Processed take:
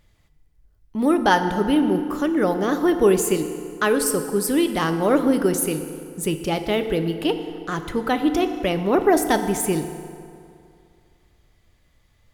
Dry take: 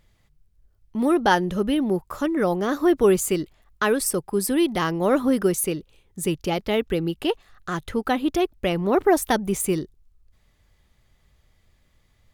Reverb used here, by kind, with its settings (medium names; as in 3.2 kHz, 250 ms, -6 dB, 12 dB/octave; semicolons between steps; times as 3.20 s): FDN reverb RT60 2.4 s, low-frequency decay 0.95×, high-frequency decay 0.65×, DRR 7.5 dB; trim +1 dB